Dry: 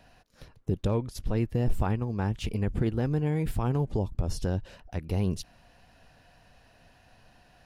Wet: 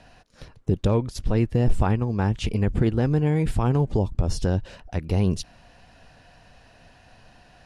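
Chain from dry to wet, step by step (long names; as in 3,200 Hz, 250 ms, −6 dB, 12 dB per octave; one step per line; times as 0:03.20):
low-pass filter 10,000 Hz 24 dB per octave
level +6 dB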